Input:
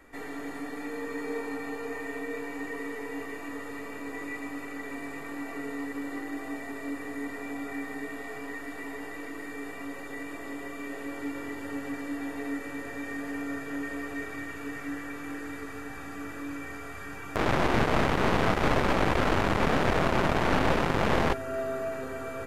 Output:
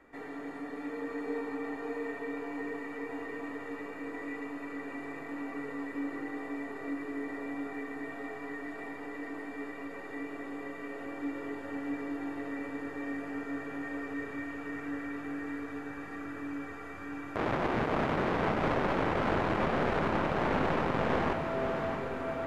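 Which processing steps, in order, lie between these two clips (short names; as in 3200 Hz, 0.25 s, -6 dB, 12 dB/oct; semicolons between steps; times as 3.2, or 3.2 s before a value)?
LPF 1800 Hz 6 dB/oct; low shelf 76 Hz -11.5 dB; limiter -17.5 dBFS, peak gain reduction 4 dB; on a send: diffused feedback echo 0.642 s, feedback 57%, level -5.5 dB; on the sum: gain -2 dB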